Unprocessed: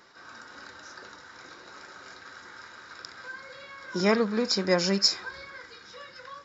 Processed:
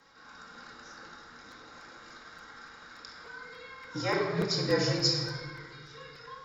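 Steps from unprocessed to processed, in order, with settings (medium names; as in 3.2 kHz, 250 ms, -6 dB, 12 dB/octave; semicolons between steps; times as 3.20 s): 4.01–4.44 s: high-pass 450 Hz -> 180 Hz 24 dB/octave; simulated room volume 1500 m³, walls mixed, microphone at 2.3 m; frequency shift -50 Hz; crackling interface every 0.29 s, samples 256, repeat, from 0.93 s; trim -7 dB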